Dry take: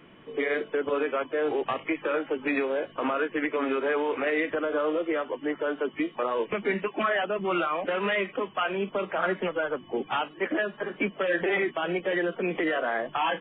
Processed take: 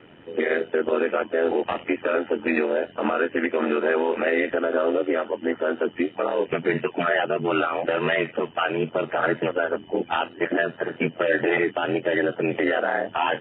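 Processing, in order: air absorption 71 m; notch comb 1100 Hz; ring modulator 42 Hz; gain +8 dB

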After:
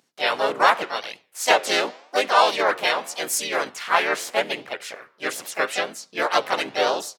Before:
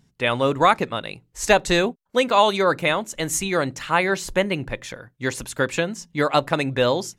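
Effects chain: flange 0.85 Hz, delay 6.5 ms, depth 8.8 ms, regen +90%; harmoniser -4 st -3 dB, +3 st -2 dB, +7 st -6 dB; HPF 520 Hz 12 dB/oct; gain +1.5 dB

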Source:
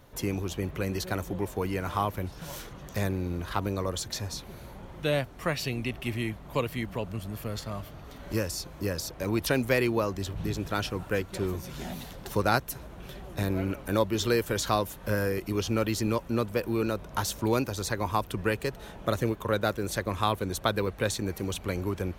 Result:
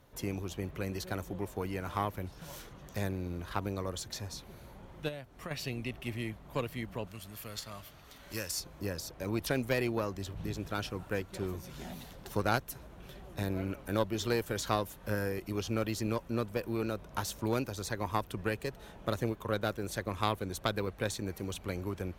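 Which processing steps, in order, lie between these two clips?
5.08–5.51 compressor 12:1, threshold -32 dBFS, peak gain reduction 11 dB; 7.07–8.6 tilt shelf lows -6.5 dB, about 1200 Hz; added harmonics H 2 -8 dB, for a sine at -9.5 dBFS; gain -6.5 dB

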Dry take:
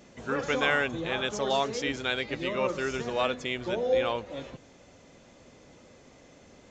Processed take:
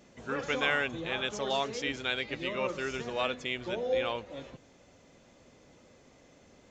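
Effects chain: dynamic EQ 2700 Hz, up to +4 dB, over -42 dBFS, Q 1.2; gain -4.5 dB

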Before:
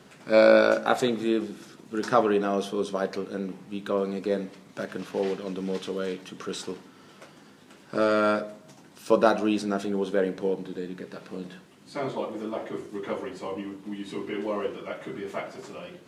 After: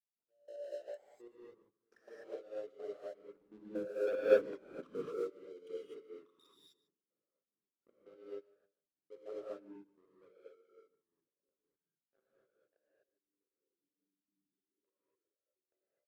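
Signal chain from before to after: formant sharpening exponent 3; Doppler pass-by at 4.32, 19 m/s, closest 3.3 m; sample leveller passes 3; step gate "..x...x.x" 188 bpm -24 dB; notches 60/120/180 Hz; echo 0.148 s -18 dB; non-linear reverb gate 0.28 s rising, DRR -8 dB; upward expander 1.5:1, over -41 dBFS; gain -7 dB

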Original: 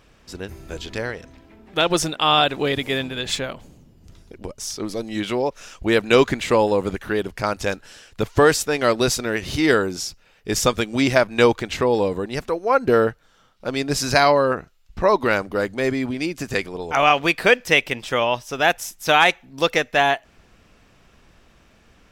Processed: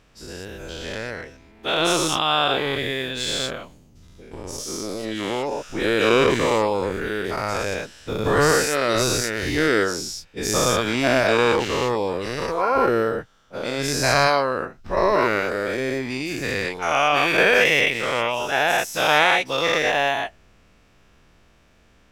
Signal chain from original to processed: spectral dilation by 0.24 s; gain -8 dB

